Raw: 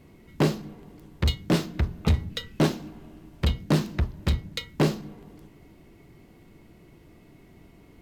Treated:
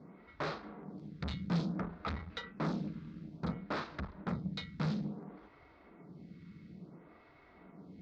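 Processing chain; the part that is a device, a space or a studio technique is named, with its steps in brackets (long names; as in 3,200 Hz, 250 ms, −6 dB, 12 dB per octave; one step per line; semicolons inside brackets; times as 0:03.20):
vibe pedal into a guitar amplifier (phaser with staggered stages 0.58 Hz; tube saturation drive 37 dB, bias 0.55; loudspeaker in its box 78–4,500 Hz, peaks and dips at 110 Hz −7 dB, 180 Hz +9 dB, 360 Hz −5 dB, 1,300 Hz +7 dB, 2,900 Hz −9 dB)
level +3.5 dB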